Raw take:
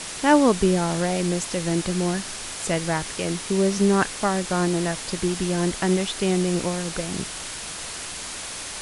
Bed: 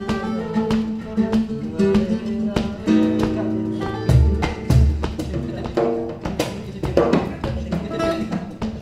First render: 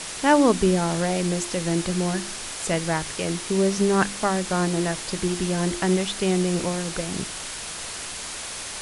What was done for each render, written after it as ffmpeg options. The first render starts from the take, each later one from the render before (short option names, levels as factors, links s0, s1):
-af "bandreject=f=50:t=h:w=4,bandreject=f=100:t=h:w=4,bandreject=f=150:t=h:w=4,bandreject=f=200:t=h:w=4,bandreject=f=250:t=h:w=4,bandreject=f=300:t=h:w=4,bandreject=f=350:t=h:w=4"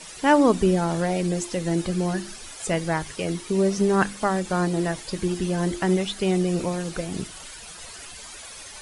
-af "afftdn=nr=12:nf=-34"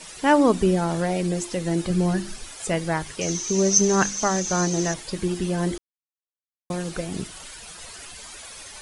-filter_complex "[0:a]asettb=1/sr,asplit=3[s0][s1][s2];[s0]atrim=end=1.904[s3];[s1]atrim=start=1.9:end=2.44,asetpts=PTS-STARTPTS,afade=t=in:d=0.004:c=qsin,afade=t=out:st=0.536:d=0.004:c=qsin,lowshelf=f=160:g=9[s4];[s2]atrim=start=2.436[s5];[s3][s4]acrossfade=d=0.004:c1=hsin:c2=qsin[s6];[s6][s5]acrossfade=d=0.004:c1=qsin:c2=hsin,asettb=1/sr,asplit=3[s7][s8][s9];[s7]atrim=end=3.214[s10];[s8]atrim=start=3.21:end=4.94,asetpts=PTS-STARTPTS,afade=t=in:d=0.004:c=qsin,afade=t=out:st=1.726:d=0.004:c=qsin,lowpass=f=6200:t=q:w=16[s11];[s9]atrim=start=4.936[s12];[s10][s11]acrossfade=d=0.004:c1=hsin:c2=qsin[s13];[s13][s12]acrossfade=d=0.004:c1=qsin:c2=hsin,asplit=3[s14][s15][s16];[s14]atrim=end=5.78,asetpts=PTS-STARTPTS,afade=t=out:st=5.776:d=0.004:c=hsin[s17];[s15]atrim=start=5.78:end=6.7,asetpts=PTS-STARTPTS,volume=0[s18];[s16]atrim=start=6.7,asetpts=PTS-STARTPTS,afade=t=in:d=0.004:c=hsin[s19];[s17][s18][s19]concat=n=3:v=0:a=1"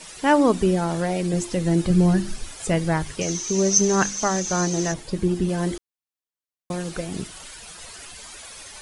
-filter_complex "[0:a]asettb=1/sr,asplit=3[s0][s1][s2];[s0]atrim=end=1.334[s3];[s1]atrim=start=1.33:end=3.23,asetpts=PTS-STARTPTS,afade=t=in:d=0.004:c=qsin,afade=t=out:st=1.896:d=0.004:c=qsin,lowshelf=f=240:g=8[s4];[s2]atrim=start=3.226[s5];[s3][s4]acrossfade=d=0.004:c1=hsin:c2=qsin[s6];[s6][s5]acrossfade=d=0.004:c1=qsin:c2=hsin,asettb=1/sr,asplit=3[s7][s8][s9];[s7]atrim=end=4.924[s10];[s8]atrim=start=4.92:end=5.49,asetpts=PTS-STARTPTS,afade=t=in:d=0.004:c=qsin,afade=t=out:st=0.566:d=0.004:c=qsin,tiltshelf=f=700:g=5[s11];[s9]atrim=start=5.486[s12];[s10][s11]acrossfade=d=0.004:c1=hsin:c2=qsin[s13];[s13][s12]acrossfade=d=0.004:c1=qsin:c2=hsin"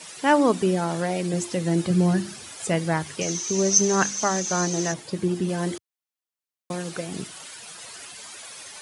-af "highpass=f=99:w=0.5412,highpass=f=99:w=1.3066,lowshelf=f=380:g=-3.5"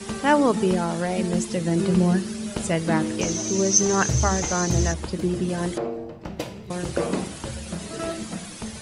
-filter_complex "[1:a]volume=0.355[s0];[0:a][s0]amix=inputs=2:normalize=0"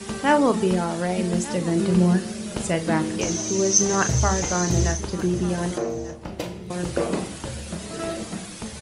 -filter_complex "[0:a]asplit=2[s0][s1];[s1]adelay=39,volume=0.282[s2];[s0][s2]amix=inputs=2:normalize=0,aecho=1:1:1193:0.141"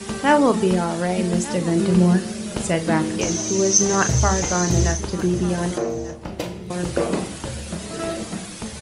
-af "volume=1.33,alimiter=limit=0.708:level=0:latency=1"